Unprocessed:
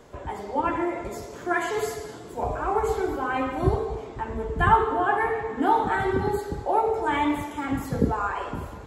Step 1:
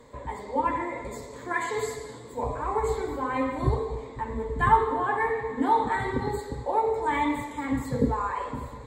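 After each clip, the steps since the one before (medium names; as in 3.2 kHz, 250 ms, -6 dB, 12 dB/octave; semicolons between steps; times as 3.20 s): rippled EQ curve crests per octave 1, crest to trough 11 dB; trim -3.5 dB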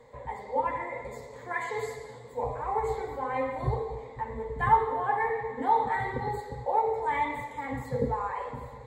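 graphic EQ with 31 bands 125 Hz +6 dB, 315 Hz -10 dB, 500 Hz +9 dB, 800 Hz +10 dB, 2 kHz +7 dB, 8 kHz -4 dB; trim -7 dB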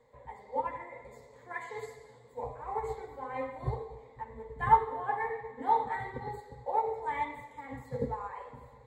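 upward expansion 1.5:1, over -37 dBFS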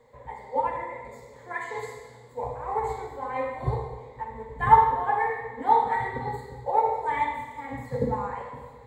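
Schroeder reverb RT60 0.93 s, combs from 25 ms, DRR 4 dB; trim +6 dB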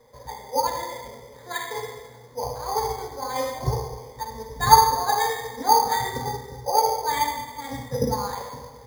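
careless resampling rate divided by 8×, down filtered, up hold; trim +2.5 dB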